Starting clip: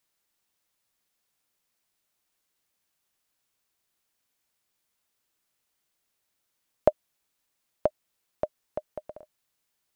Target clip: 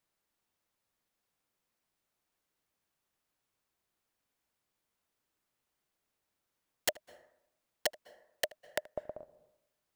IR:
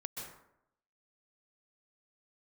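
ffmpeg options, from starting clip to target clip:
-filter_complex "[0:a]highshelf=f=2100:g=-8.5,aeval=exprs='(mod(11.2*val(0)+1,2)-1)/11.2':c=same,asplit=2[s0][s1];[1:a]atrim=start_sample=2205,highshelf=f=3000:g=-11.5,adelay=78[s2];[s1][s2]afir=irnorm=-1:irlink=0,volume=0.158[s3];[s0][s3]amix=inputs=2:normalize=0"

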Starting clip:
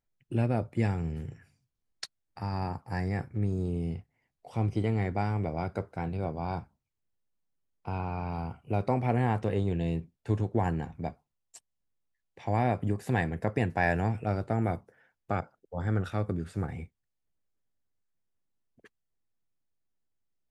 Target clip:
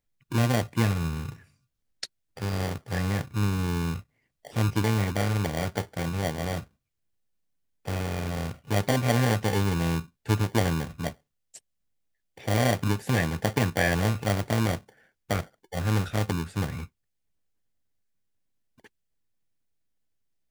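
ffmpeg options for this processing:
-filter_complex "[0:a]bandreject=f=370:w=12,acrossover=split=1200[s0][s1];[s0]acrusher=samples=34:mix=1:aa=0.000001[s2];[s2][s1]amix=inputs=2:normalize=0,volume=1.58"

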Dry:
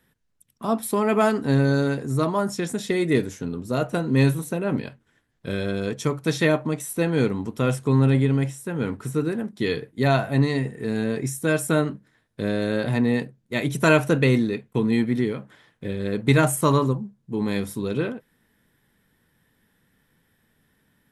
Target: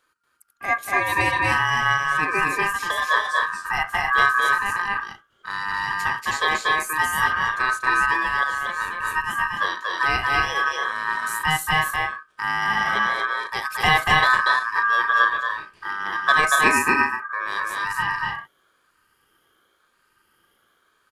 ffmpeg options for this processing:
-af "afftfilt=real='re*pow(10,11/40*sin(2*PI*(0.69*log(max(b,1)*sr/1024/100)/log(2)-(0.91)*(pts-256)/sr)))':imag='im*pow(10,11/40*sin(2*PI*(0.69*log(max(b,1)*sr/1024/100)/log(2)-(0.91)*(pts-256)/sr)))':win_size=1024:overlap=0.75,aecho=1:1:236.2|271.1:0.794|0.447,aeval=exprs='val(0)*sin(2*PI*1400*n/s)':c=same"

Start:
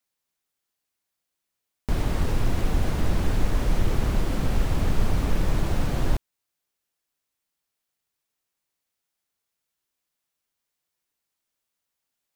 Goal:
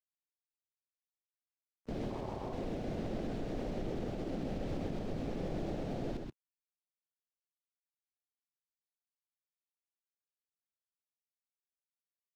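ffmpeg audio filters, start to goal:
-filter_complex "[0:a]afwtdn=0.0355,tiltshelf=f=1300:g=-4.5,acrusher=bits=10:mix=0:aa=0.000001,acrossover=split=160 6100:gain=0.158 1 0.158[s0][s1][s2];[s0][s1][s2]amix=inputs=3:normalize=0,alimiter=level_in=3.55:limit=0.0631:level=0:latency=1:release=181,volume=0.282,asettb=1/sr,asplit=3[s3][s4][s5];[s3]atrim=end=2.104[s6];[s4]atrim=start=2.1:end=2.53,asetpts=PTS-STARTPTS,afade=t=in:d=0.004:c=qsin,afade=t=out:st=0.426:d=0.004:c=qsin,aeval=exprs='val(0)*sin(2*PI*380*n/s)':c=same[s7];[s5]atrim=start=2.526[s8];[s6][s7]acrossfade=d=0.004:c1=hsin:c2=qsin[s9];[s9][s8]acrossfade=d=0.004:c1=qsin:c2=hsin,aecho=1:1:129:0.596,volume=1.68"

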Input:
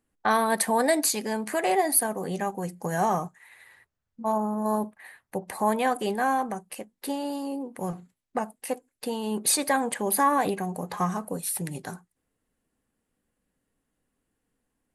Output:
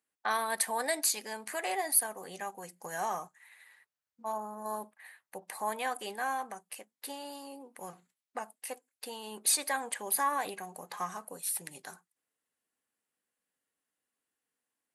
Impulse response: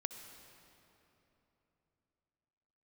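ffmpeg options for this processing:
-af "highpass=f=1300:p=1,volume=0.668"

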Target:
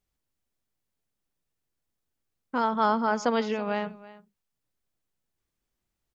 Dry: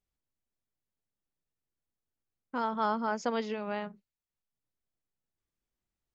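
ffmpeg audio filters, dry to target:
-af "aecho=1:1:329:0.112,volume=2"

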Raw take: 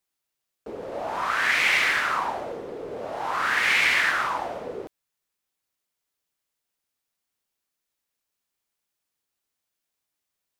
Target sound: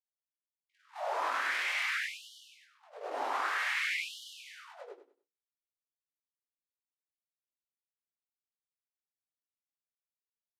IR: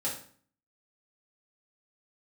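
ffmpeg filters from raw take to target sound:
-filter_complex "[0:a]anlmdn=0.00631,agate=range=0.002:threshold=0.0251:ratio=16:detection=peak,equalizer=f=500:t=o:w=1:g=-2.5,bandreject=f=60:t=h:w=6,bandreject=f=120:t=h:w=6,bandreject=f=180:t=h:w=6,bandreject=f=240:t=h:w=6,bandreject=f=300:t=h:w=6,bandreject=f=360:t=h:w=6,bandreject=f=420:t=h:w=6,bandreject=f=480:t=h:w=6,acompressor=threshold=0.0224:ratio=2,alimiter=level_in=1.26:limit=0.0631:level=0:latency=1:release=30,volume=0.794,flanger=delay=18:depth=6.2:speed=0.37,asplit=2[s0][s1];[s1]adelay=18,volume=0.211[s2];[s0][s2]amix=inputs=2:normalize=0,asplit=2[s3][s4];[s4]aecho=0:1:98|196|294|392:0.708|0.177|0.0442|0.0111[s5];[s3][s5]amix=inputs=2:normalize=0,aresample=32000,aresample=44100,afftfilt=real='re*gte(b*sr/1024,230*pow(2900/230,0.5+0.5*sin(2*PI*0.53*pts/sr)))':imag='im*gte(b*sr/1024,230*pow(2900/230,0.5+0.5*sin(2*PI*0.53*pts/sr)))':win_size=1024:overlap=0.75,volume=1.33"

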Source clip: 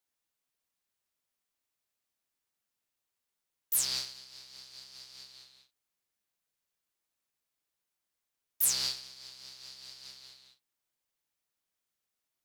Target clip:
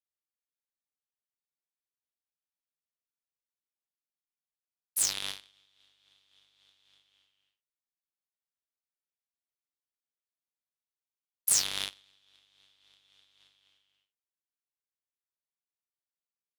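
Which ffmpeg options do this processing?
-af "asetrate=33075,aresample=44100,aeval=exprs='0.237*(cos(1*acos(clip(val(0)/0.237,-1,1)))-cos(1*PI/2))+0.00944*(cos(5*acos(clip(val(0)/0.237,-1,1)))-cos(5*PI/2))+0.0376*(cos(7*acos(clip(val(0)/0.237,-1,1)))-cos(7*PI/2))':c=same,volume=1.41"

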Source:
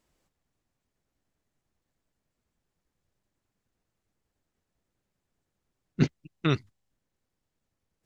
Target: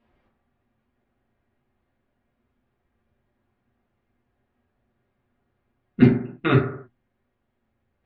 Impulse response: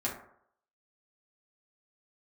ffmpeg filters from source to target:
-filter_complex "[0:a]lowpass=f=3200:w=0.5412,lowpass=f=3200:w=1.3066[s0];[1:a]atrim=start_sample=2205,afade=t=out:st=0.38:d=0.01,atrim=end_sample=17199[s1];[s0][s1]afir=irnorm=-1:irlink=0,volume=1.58"

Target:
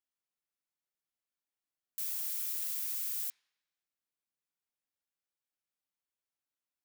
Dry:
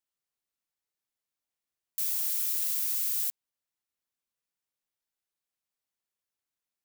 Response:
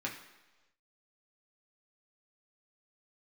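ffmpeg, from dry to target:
-filter_complex "[0:a]asplit=2[s0][s1];[1:a]atrim=start_sample=2205,lowpass=4400[s2];[s1][s2]afir=irnorm=-1:irlink=0,volume=0.282[s3];[s0][s3]amix=inputs=2:normalize=0,volume=0.473"

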